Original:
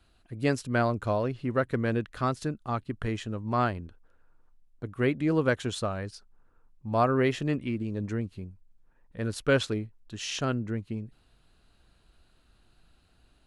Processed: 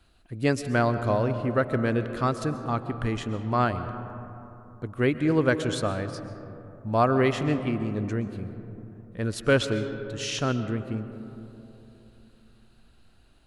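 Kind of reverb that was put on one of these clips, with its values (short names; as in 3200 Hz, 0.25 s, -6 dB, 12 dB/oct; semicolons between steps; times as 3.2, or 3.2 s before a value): digital reverb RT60 3.3 s, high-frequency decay 0.3×, pre-delay 90 ms, DRR 10 dB; gain +2.5 dB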